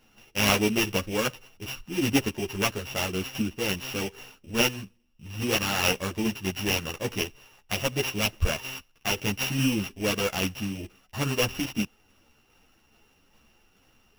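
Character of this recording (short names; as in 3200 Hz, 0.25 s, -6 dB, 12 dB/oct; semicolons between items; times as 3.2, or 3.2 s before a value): a buzz of ramps at a fixed pitch in blocks of 16 samples; tremolo saw down 2.4 Hz, depth 35%; aliases and images of a low sample rate 8400 Hz, jitter 0%; a shimmering, thickened sound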